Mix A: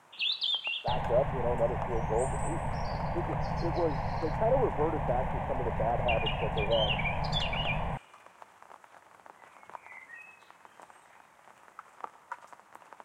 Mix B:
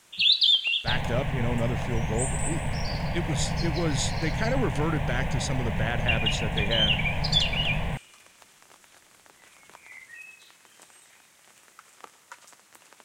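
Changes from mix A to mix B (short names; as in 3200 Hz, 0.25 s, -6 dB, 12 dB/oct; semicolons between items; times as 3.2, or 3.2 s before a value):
speech: remove Butterworth band-pass 520 Hz, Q 1.2; second sound +5.5 dB; master: add EQ curve 390 Hz 0 dB, 920 Hz -9 dB, 4100 Hz +13 dB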